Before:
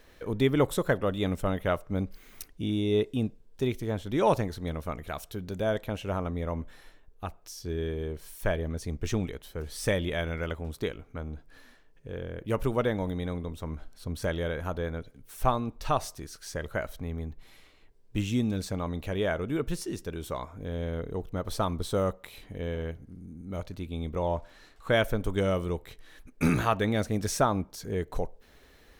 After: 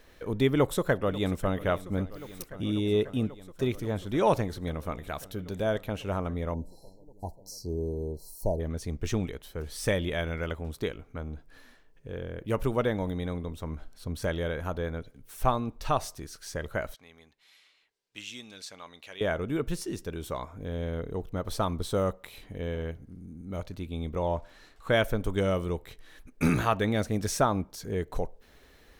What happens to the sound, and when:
0.51–1.56 s: echo throw 540 ms, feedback 85%, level -17.5 dB
6.54–8.60 s: brick-wall FIR band-stop 1–4 kHz
16.94–19.21 s: band-pass filter 4 kHz, Q 0.67

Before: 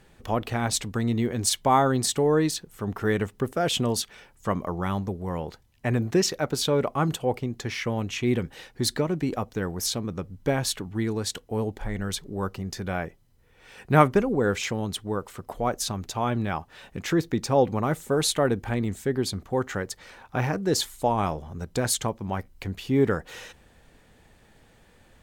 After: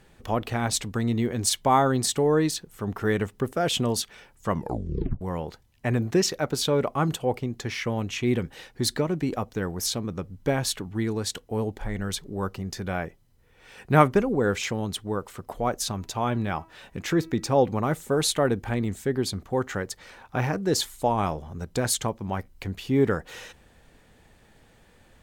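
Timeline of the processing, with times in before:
4.51 s: tape stop 0.70 s
15.87–17.54 s: de-hum 324.5 Hz, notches 8

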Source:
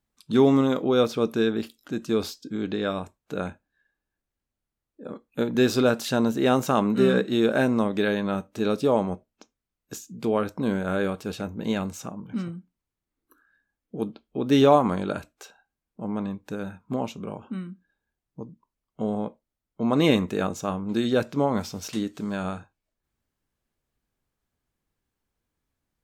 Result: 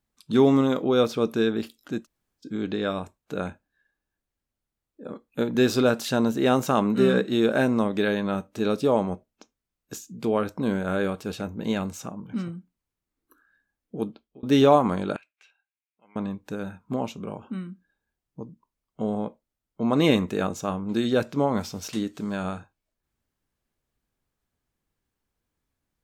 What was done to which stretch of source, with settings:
2.02–2.43 s: room tone, crossfade 0.10 s
14.03–14.43 s: fade out
15.16–16.16 s: band-pass filter 2.4 kHz, Q 4.1

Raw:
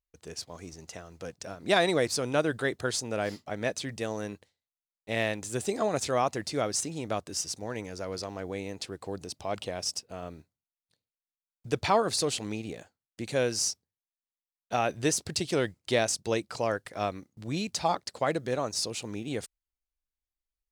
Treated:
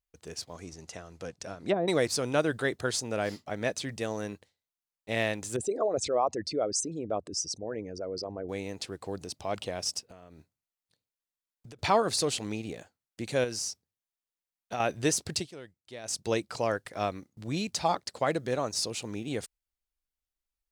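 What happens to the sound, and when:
0.54–1.88 s: low-pass that closes with the level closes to 500 Hz, closed at -20 dBFS
5.56–8.49 s: resonances exaggerated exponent 2
10.01–11.79 s: compression 12:1, threshold -45 dBFS
13.44–14.80 s: compression 2:1, threshold -34 dBFS
15.36–16.17 s: dip -18 dB, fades 0.14 s

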